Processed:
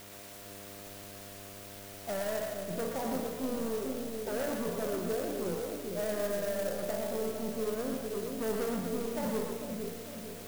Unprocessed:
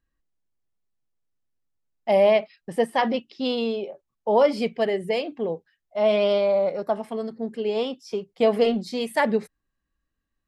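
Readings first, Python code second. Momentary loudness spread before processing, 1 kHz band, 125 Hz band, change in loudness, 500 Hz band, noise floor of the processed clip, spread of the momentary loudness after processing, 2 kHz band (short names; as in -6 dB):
12 LU, -13.5 dB, -3.0 dB, -12.0 dB, -11.5 dB, -47 dBFS, 12 LU, -11.0 dB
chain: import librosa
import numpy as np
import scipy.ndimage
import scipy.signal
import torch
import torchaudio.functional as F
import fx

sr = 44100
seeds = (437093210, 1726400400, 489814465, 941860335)

p1 = fx.spec_trails(x, sr, decay_s=0.41)
p2 = fx.env_lowpass_down(p1, sr, base_hz=650.0, full_db=-18.0)
p3 = fx.tilt_shelf(p2, sr, db=6.0, hz=970.0)
p4 = 10.0 ** (-22.0 / 20.0) * np.tanh(p3 / 10.0 ** (-22.0 / 20.0))
p5 = fx.comb_fb(p4, sr, f0_hz=88.0, decay_s=0.94, harmonics='all', damping=0.0, mix_pct=70)
p6 = fx.dmg_buzz(p5, sr, base_hz=100.0, harmonics=7, level_db=-53.0, tilt_db=0, odd_only=False)
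p7 = fx.quant_dither(p6, sr, seeds[0], bits=8, dither='triangular')
p8 = p7 + fx.echo_split(p7, sr, split_hz=600.0, low_ms=449, high_ms=119, feedback_pct=52, wet_db=-3.5, dry=0)
p9 = fx.clock_jitter(p8, sr, seeds[1], jitter_ms=0.057)
y = p9 * librosa.db_to_amplitude(-1.5)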